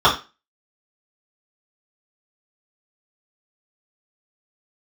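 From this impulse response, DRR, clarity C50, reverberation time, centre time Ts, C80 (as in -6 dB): -6.5 dB, 10.0 dB, 0.30 s, 21 ms, 16.0 dB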